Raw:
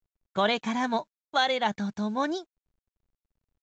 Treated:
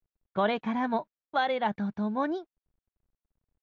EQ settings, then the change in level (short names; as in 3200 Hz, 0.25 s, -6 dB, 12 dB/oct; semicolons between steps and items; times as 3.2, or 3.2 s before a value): LPF 2000 Hz 6 dB/oct; air absorption 180 m; 0.0 dB